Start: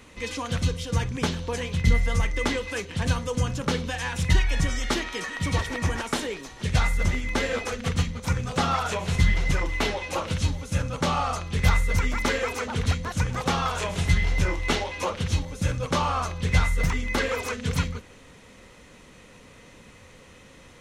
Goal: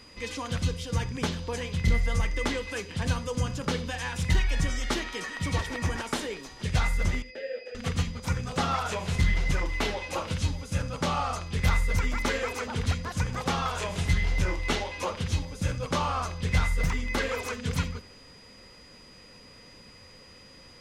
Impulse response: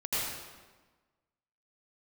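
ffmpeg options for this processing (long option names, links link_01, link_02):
-filter_complex "[0:a]volume=12.5dB,asoftclip=hard,volume=-12.5dB,asettb=1/sr,asplit=3[link_01][link_02][link_03];[link_01]atrim=end=7.224[link_04];[link_02]atrim=start=7.22:end=7.75,asetpts=PTS-STARTPTS,afade=type=in:duration=0.004:curve=qsin,afade=type=out:start_time=0.526:duration=0.004:curve=qsin,asplit=3[link_05][link_06][link_07];[link_05]bandpass=frequency=530:width_type=q:width=8,volume=0dB[link_08];[link_06]bandpass=frequency=1840:width_type=q:width=8,volume=-6dB[link_09];[link_07]bandpass=frequency=2480:width_type=q:width=8,volume=-9dB[link_10];[link_08][link_09][link_10]amix=inputs=3:normalize=0[link_11];[link_03]atrim=start=7.746[link_12];[link_04][link_11]acrossfade=duration=0.004:curve1=hsin:curve2=qsin[link_13];[link_13][link_12]acrossfade=duration=0.004:curve1=qsin:curve2=hsin,aeval=exprs='val(0)+0.00355*sin(2*PI*4900*n/s)':channel_layout=same,asplit=2[link_14][link_15];[1:a]atrim=start_sample=2205,atrim=end_sample=3969[link_16];[link_15][link_16]afir=irnorm=-1:irlink=0,volume=-17.5dB[link_17];[link_14][link_17]amix=inputs=2:normalize=0,volume=-4dB"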